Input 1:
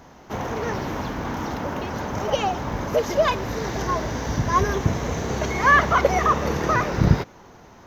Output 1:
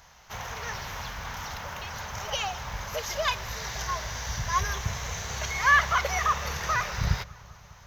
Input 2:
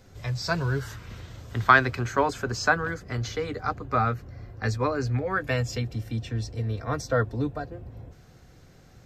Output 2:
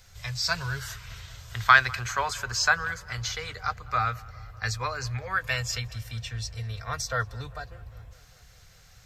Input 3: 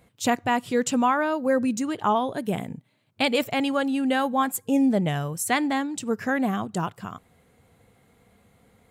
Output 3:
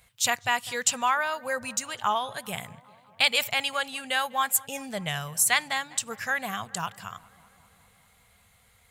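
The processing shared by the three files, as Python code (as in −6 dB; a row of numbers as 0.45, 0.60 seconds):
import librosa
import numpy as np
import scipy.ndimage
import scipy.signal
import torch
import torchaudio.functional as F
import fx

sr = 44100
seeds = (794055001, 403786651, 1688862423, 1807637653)

y = fx.tone_stack(x, sr, knobs='10-0-10')
y = fx.echo_filtered(y, sr, ms=200, feedback_pct=75, hz=2600.0, wet_db=-22.0)
y = y * 10.0 ** (-30 / 20.0) / np.sqrt(np.mean(np.square(y)))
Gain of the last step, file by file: +2.5, +7.5, +7.5 decibels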